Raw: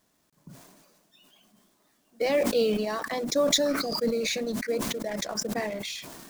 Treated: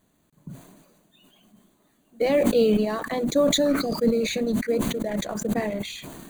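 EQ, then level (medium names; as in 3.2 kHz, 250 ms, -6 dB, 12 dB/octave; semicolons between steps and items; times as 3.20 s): Butterworth band-stop 5.3 kHz, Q 3.7; bass shelf 400 Hz +10 dB; 0.0 dB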